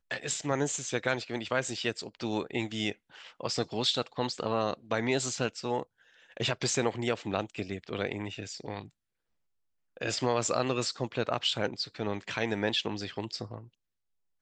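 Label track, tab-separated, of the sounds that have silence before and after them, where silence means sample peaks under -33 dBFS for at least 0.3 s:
3.410000	5.820000	sound
6.370000	8.820000	sound
10.010000	13.580000	sound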